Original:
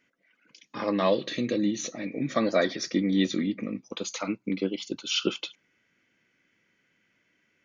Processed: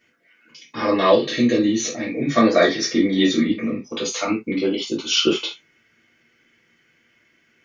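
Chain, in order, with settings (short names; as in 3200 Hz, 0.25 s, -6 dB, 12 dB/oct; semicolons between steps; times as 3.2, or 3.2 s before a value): non-linear reverb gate 0.1 s falling, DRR -6 dB; gain +2.5 dB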